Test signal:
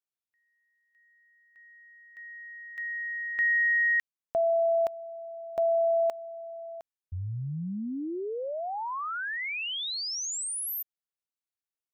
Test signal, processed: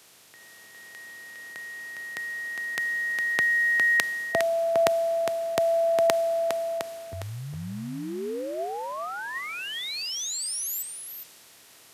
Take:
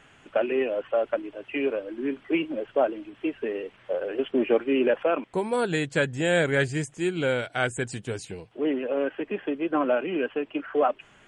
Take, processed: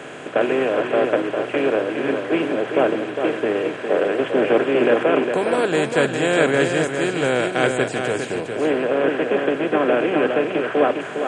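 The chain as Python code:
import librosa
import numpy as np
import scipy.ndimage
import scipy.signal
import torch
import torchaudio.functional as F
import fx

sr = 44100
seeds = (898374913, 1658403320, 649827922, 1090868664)

p1 = fx.bin_compress(x, sr, power=0.4)
p2 = scipy.signal.sosfilt(scipy.signal.butter(2, 110.0, 'highpass', fs=sr, output='sos'), p1)
p3 = fx.peak_eq(p2, sr, hz=430.0, db=3.0, octaves=0.68)
p4 = p3 + fx.echo_single(p3, sr, ms=408, db=-5.0, dry=0)
p5 = fx.band_widen(p4, sr, depth_pct=40)
y = p5 * librosa.db_to_amplitude(-1.5)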